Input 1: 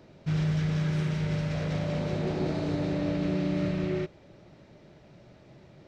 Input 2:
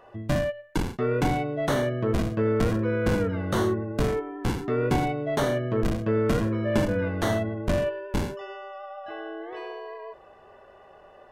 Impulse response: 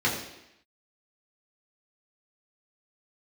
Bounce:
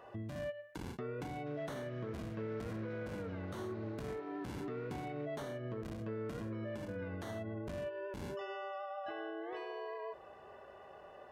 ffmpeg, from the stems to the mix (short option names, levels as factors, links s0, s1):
-filter_complex "[0:a]acompressor=threshold=0.0141:ratio=6,bandpass=f=1300:t=q:w=1:csg=0,adelay=1200,volume=0.562[s0];[1:a]acompressor=threshold=0.0282:ratio=6,alimiter=level_in=2.37:limit=0.0631:level=0:latency=1:release=212,volume=0.422,volume=0.708[s1];[s0][s1]amix=inputs=2:normalize=0,highpass=57"